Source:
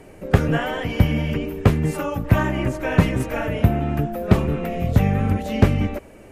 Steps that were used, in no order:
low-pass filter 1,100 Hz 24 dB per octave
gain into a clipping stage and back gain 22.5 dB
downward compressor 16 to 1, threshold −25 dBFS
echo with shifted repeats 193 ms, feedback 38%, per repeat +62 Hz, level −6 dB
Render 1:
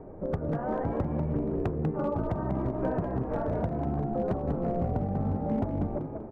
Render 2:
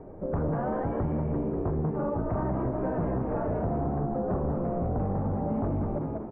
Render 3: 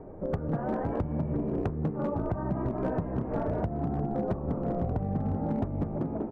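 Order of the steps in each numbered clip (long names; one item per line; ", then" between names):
downward compressor, then low-pass filter, then gain into a clipping stage and back, then echo with shifted repeats
gain into a clipping stage and back, then low-pass filter, then echo with shifted repeats, then downward compressor
low-pass filter, then echo with shifted repeats, then downward compressor, then gain into a clipping stage and back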